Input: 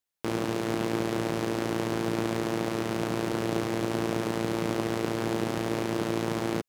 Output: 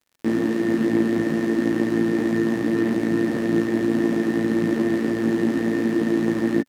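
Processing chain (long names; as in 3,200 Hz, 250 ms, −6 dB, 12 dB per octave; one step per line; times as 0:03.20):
multi-voice chorus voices 4, 1.3 Hz, delay 15 ms, depth 3.4 ms
hollow resonant body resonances 260/1,800 Hz, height 18 dB, ringing for 35 ms
surface crackle 66 per second −46 dBFS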